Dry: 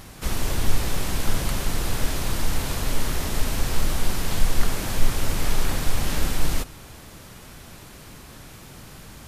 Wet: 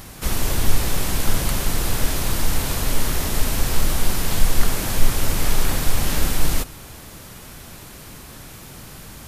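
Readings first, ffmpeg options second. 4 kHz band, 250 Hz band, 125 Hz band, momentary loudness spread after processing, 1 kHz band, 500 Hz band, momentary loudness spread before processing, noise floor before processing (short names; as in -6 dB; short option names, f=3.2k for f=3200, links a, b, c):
+3.5 dB, +3.0 dB, +3.0 dB, 16 LU, +3.0 dB, +3.0 dB, 16 LU, -44 dBFS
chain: -af "highshelf=f=10k:g=7,volume=3dB"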